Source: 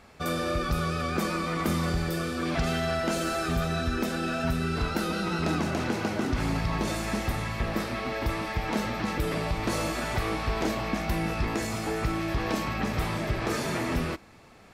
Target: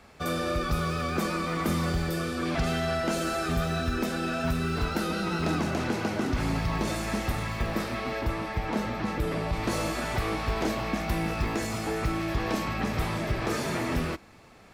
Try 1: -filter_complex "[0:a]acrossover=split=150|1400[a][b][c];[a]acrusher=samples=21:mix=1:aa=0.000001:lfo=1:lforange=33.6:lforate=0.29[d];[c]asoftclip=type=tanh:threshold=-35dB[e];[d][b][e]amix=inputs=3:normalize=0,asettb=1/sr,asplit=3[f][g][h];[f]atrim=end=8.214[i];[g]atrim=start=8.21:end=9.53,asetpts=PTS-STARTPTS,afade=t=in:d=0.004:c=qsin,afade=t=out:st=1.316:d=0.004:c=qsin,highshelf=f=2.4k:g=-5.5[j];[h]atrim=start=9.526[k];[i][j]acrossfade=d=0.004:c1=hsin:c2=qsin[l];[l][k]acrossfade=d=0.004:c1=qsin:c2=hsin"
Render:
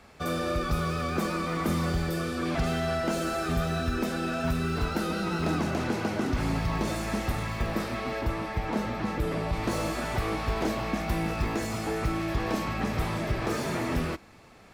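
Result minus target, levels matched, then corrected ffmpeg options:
soft clip: distortion +11 dB
-filter_complex "[0:a]acrossover=split=150|1400[a][b][c];[a]acrusher=samples=21:mix=1:aa=0.000001:lfo=1:lforange=33.6:lforate=0.29[d];[c]asoftclip=type=tanh:threshold=-27dB[e];[d][b][e]amix=inputs=3:normalize=0,asettb=1/sr,asplit=3[f][g][h];[f]atrim=end=8.214[i];[g]atrim=start=8.21:end=9.53,asetpts=PTS-STARTPTS,afade=t=in:d=0.004:c=qsin,afade=t=out:st=1.316:d=0.004:c=qsin,highshelf=f=2.4k:g=-5.5[j];[h]atrim=start=9.526[k];[i][j]acrossfade=d=0.004:c1=hsin:c2=qsin[l];[l][k]acrossfade=d=0.004:c1=qsin:c2=hsin"

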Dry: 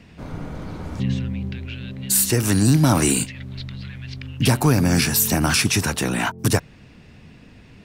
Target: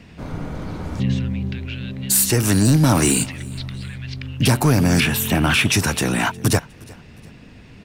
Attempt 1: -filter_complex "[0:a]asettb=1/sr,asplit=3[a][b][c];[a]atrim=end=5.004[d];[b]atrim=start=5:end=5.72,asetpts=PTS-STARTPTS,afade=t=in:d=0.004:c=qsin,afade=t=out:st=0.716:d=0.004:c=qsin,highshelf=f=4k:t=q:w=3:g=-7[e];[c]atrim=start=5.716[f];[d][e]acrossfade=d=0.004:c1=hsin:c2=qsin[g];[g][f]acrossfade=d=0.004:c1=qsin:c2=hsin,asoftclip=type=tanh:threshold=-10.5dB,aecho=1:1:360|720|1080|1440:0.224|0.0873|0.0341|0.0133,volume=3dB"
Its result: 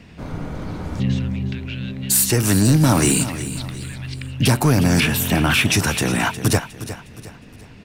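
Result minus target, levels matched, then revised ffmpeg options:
echo-to-direct +11 dB
-filter_complex "[0:a]asettb=1/sr,asplit=3[a][b][c];[a]atrim=end=5.004[d];[b]atrim=start=5:end=5.72,asetpts=PTS-STARTPTS,afade=t=in:d=0.004:c=qsin,afade=t=out:st=0.716:d=0.004:c=qsin,highshelf=f=4k:t=q:w=3:g=-7[e];[c]atrim=start=5.716[f];[d][e]acrossfade=d=0.004:c1=hsin:c2=qsin[g];[g][f]acrossfade=d=0.004:c1=qsin:c2=hsin,asoftclip=type=tanh:threshold=-10.5dB,aecho=1:1:360|720:0.0631|0.0246,volume=3dB"

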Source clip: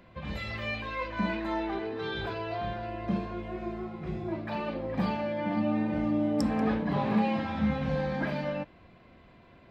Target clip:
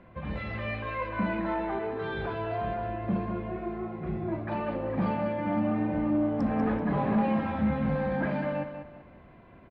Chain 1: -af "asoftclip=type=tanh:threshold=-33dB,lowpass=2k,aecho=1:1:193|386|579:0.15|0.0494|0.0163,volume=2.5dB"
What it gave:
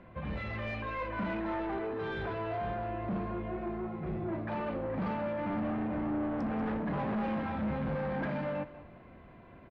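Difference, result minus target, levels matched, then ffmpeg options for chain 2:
soft clip: distortion +11 dB; echo-to-direct -7.5 dB
-af "asoftclip=type=tanh:threshold=-22dB,lowpass=2k,aecho=1:1:193|386|579|772:0.355|0.117|0.0386|0.0128,volume=2.5dB"

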